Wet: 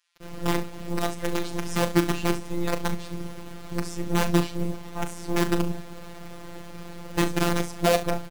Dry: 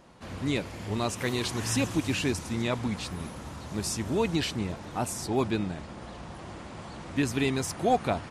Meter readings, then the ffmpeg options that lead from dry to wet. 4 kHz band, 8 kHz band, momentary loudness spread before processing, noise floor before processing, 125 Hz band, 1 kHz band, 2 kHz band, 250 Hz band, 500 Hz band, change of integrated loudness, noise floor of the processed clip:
0.0 dB, −1.0 dB, 15 LU, −43 dBFS, +2.5 dB, +2.0 dB, +2.5 dB, +2.5 dB, +3.0 dB, +2.5 dB, −40 dBFS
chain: -filter_complex "[0:a]highpass=120,tiltshelf=frequency=820:gain=8.5,acrossover=split=2000[link_01][link_02];[link_01]acrusher=bits=4:dc=4:mix=0:aa=0.000001[link_03];[link_03][link_02]amix=inputs=2:normalize=0,aecho=1:1:38|69:0.316|0.168,afftfilt=real='hypot(re,im)*cos(PI*b)':imag='0':win_size=1024:overlap=0.75,volume=2.5dB"

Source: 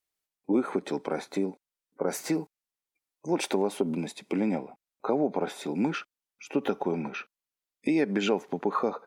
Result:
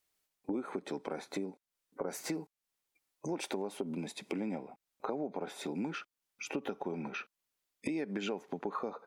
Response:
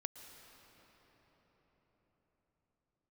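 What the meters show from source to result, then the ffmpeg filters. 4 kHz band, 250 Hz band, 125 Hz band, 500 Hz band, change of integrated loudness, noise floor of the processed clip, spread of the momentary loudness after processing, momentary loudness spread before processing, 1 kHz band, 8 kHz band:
−7.0 dB, −9.5 dB, −8.5 dB, −10.0 dB, −9.5 dB, below −85 dBFS, 7 LU, 10 LU, −9.0 dB, −6.0 dB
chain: -af "acompressor=threshold=-45dB:ratio=3,volume=5.5dB"

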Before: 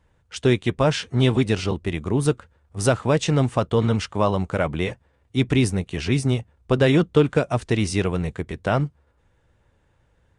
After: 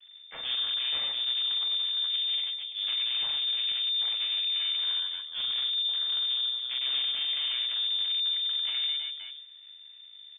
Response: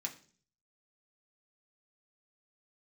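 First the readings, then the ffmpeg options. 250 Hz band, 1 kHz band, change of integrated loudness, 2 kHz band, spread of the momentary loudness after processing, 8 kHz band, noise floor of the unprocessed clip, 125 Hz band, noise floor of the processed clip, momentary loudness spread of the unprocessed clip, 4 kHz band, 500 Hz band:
below −40 dB, −21.5 dB, −4.5 dB, −11.5 dB, 11 LU, below −40 dB, −64 dBFS, below −40 dB, −50 dBFS, 8 LU, +10.5 dB, below −35 dB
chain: -filter_complex "[0:a]lowshelf=frequency=120:width_type=q:width=1.5:gain=10,acompressor=threshold=-19dB:ratio=6,aeval=exprs='max(val(0),0)':channel_layout=same,asplit=2[link_01][link_02];[link_02]aecho=0:1:40|100|190|325|527.5:0.631|0.398|0.251|0.158|0.1[link_03];[link_01][link_03]amix=inputs=2:normalize=0,asoftclip=type=tanh:threshold=-28.5dB,asplit=2[link_04][link_05];[1:a]atrim=start_sample=2205,lowpass=frequency=3100:width=0.5412,lowpass=frequency=3100:width=1.3066[link_06];[link_05][link_06]afir=irnorm=-1:irlink=0,volume=-9dB[link_07];[link_04][link_07]amix=inputs=2:normalize=0,lowpass=frequency=3100:width_type=q:width=0.5098,lowpass=frequency=3100:width_type=q:width=0.6013,lowpass=frequency=3100:width_type=q:width=0.9,lowpass=frequency=3100:width_type=q:width=2.563,afreqshift=-3600,volume=2dB"

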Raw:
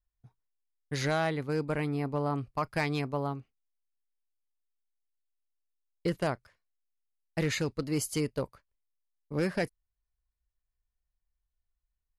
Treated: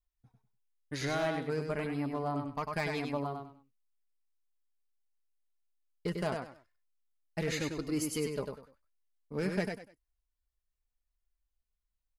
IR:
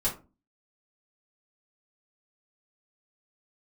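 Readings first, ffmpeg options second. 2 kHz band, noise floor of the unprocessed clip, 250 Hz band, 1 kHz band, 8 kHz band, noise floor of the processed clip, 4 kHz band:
−3.0 dB, below −85 dBFS, −2.5 dB, −3.0 dB, −3.0 dB, −85 dBFS, −2.5 dB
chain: -af "aecho=1:1:98|196|294:0.562|0.146|0.038,aeval=exprs='clip(val(0),-1,0.0668)':channel_layout=same,flanger=delay=2.8:depth=2.1:regen=38:speed=0.89:shape=sinusoidal"

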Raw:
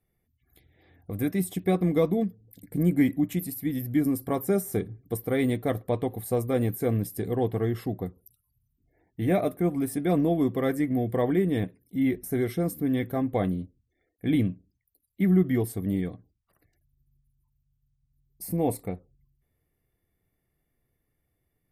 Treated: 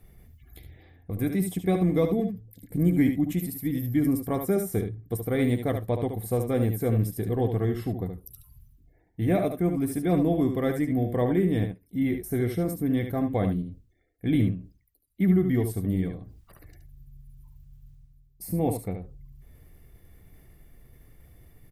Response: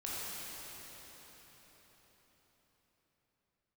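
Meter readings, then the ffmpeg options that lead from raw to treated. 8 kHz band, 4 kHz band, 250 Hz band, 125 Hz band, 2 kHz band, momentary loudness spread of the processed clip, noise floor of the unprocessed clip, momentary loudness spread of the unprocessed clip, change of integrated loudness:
−1.0 dB, −0.5 dB, +0.5 dB, +2.5 dB, −0.5 dB, 10 LU, −78 dBFS, 10 LU, +0.5 dB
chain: -af "lowshelf=frequency=84:gain=12,aecho=1:1:73:0.422,areverse,acompressor=mode=upward:threshold=-33dB:ratio=2.5,areverse,volume=-1.5dB"

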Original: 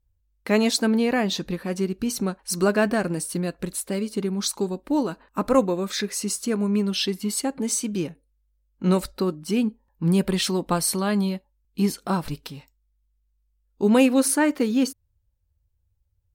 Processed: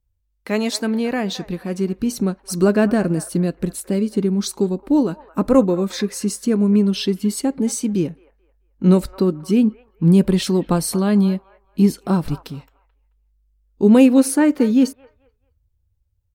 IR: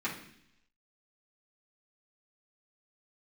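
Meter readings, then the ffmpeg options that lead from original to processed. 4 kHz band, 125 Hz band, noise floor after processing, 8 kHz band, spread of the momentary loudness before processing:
−1.0 dB, +7.5 dB, −67 dBFS, −1.0 dB, 8 LU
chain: -filter_complex "[0:a]acrossover=split=490|2100[link_01][link_02][link_03];[link_01]dynaudnorm=framelen=770:gausssize=5:maxgain=10dB[link_04];[link_02]aecho=1:1:218|436|654:0.251|0.0703|0.0197[link_05];[link_04][link_05][link_03]amix=inputs=3:normalize=0,volume=-1dB"

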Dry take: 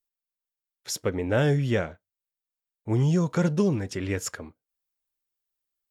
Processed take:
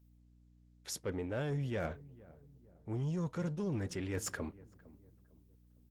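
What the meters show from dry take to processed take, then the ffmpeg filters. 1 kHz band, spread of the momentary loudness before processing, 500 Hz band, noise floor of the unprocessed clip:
−11.0 dB, 14 LU, −12.5 dB, below −85 dBFS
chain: -filter_complex "[0:a]areverse,acompressor=threshold=-35dB:ratio=8,areverse,aeval=exprs='val(0)+0.000562*(sin(2*PI*60*n/s)+sin(2*PI*2*60*n/s)/2+sin(2*PI*3*60*n/s)/3+sin(2*PI*4*60*n/s)/4+sin(2*PI*5*60*n/s)/5)':channel_layout=same,aeval=exprs='0.0501*(cos(1*acos(clip(val(0)/0.0501,-1,1)))-cos(1*PI/2))+0.00355*(cos(5*acos(clip(val(0)/0.0501,-1,1)))-cos(5*PI/2))':channel_layout=same,asplit=2[link_01][link_02];[link_02]adelay=456,lowpass=frequency=860:poles=1,volume=-19dB,asplit=2[link_03][link_04];[link_04]adelay=456,lowpass=frequency=860:poles=1,volume=0.44,asplit=2[link_05][link_06];[link_06]adelay=456,lowpass=frequency=860:poles=1,volume=0.44[link_07];[link_01][link_03][link_05][link_07]amix=inputs=4:normalize=0" -ar 48000 -c:a libopus -b:a 24k

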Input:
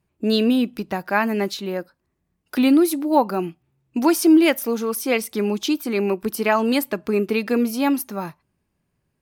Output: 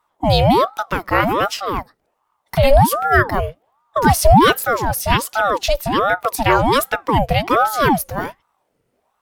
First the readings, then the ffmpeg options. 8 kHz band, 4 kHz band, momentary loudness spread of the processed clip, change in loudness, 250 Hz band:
+4.5 dB, +6.0 dB, 11 LU, +4.0 dB, −3.5 dB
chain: -af "apsyclip=9dB,aeval=exprs='val(0)*sin(2*PI*680*n/s+680*0.6/1.3*sin(2*PI*1.3*n/s))':channel_layout=same,volume=-1.5dB"

